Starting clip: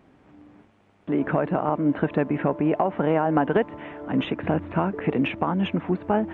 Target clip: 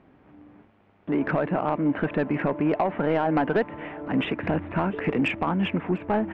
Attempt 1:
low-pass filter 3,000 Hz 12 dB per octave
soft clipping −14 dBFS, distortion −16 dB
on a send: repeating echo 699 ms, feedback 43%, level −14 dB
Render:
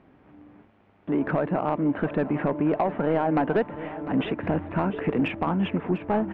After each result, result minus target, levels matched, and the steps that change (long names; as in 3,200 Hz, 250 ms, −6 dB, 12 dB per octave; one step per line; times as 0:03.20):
echo-to-direct +7.5 dB; 2,000 Hz band −3.5 dB
change: repeating echo 699 ms, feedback 43%, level −21.5 dB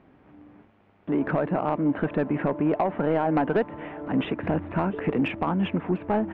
2,000 Hz band −3.5 dB
add after low-pass filter: dynamic equaliser 2,300 Hz, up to +6 dB, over −46 dBFS, Q 1.2